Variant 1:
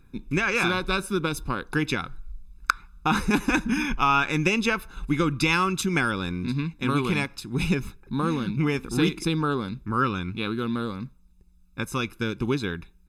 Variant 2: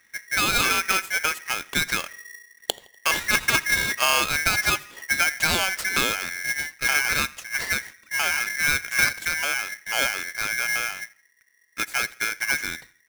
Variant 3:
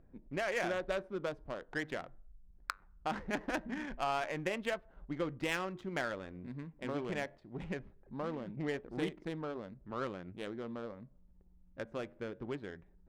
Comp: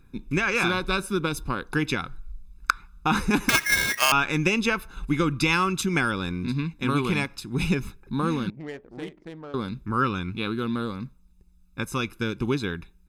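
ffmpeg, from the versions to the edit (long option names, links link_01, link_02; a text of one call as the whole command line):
ffmpeg -i take0.wav -i take1.wav -i take2.wav -filter_complex "[0:a]asplit=3[link_01][link_02][link_03];[link_01]atrim=end=3.492[link_04];[1:a]atrim=start=3.488:end=4.122[link_05];[link_02]atrim=start=4.118:end=8.502[link_06];[2:a]atrim=start=8.498:end=9.542[link_07];[link_03]atrim=start=9.538[link_08];[link_04][link_05]acrossfade=duration=0.004:curve1=hsin:curve2=hsin[link_09];[link_09][link_06]acrossfade=duration=0.004:curve1=hsin:curve2=hsin[link_10];[link_10][link_07]acrossfade=duration=0.004:curve1=hsin:curve2=hsin[link_11];[link_11][link_08]acrossfade=duration=0.004:curve1=hsin:curve2=hsin" out.wav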